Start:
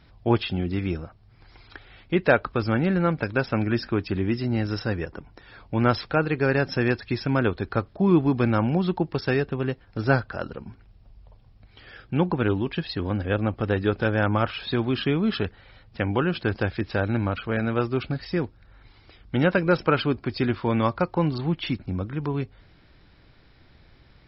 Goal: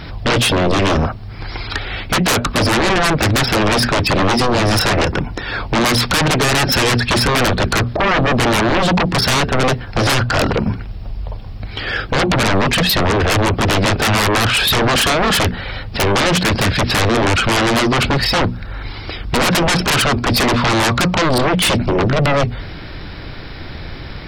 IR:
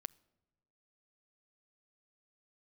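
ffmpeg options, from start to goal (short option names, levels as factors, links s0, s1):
-af "acompressor=threshold=0.0631:ratio=3,bandreject=f=60:t=h:w=6,bandreject=f=120:t=h:w=6,bandreject=f=180:t=h:w=6,bandreject=f=240:t=h:w=6,aeval=exprs='0.211*sin(PI/2*8.91*val(0)/0.211)':c=same,volume=1.33"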